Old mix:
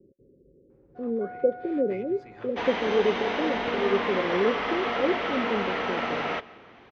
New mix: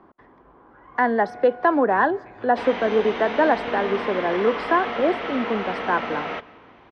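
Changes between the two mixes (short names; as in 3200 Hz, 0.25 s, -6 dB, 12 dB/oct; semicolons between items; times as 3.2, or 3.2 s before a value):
speech: remove rippled Chebyshev low-pass 560 Hz, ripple 6 dB; second sound: add high shelf 5200 Hz -6.5 dB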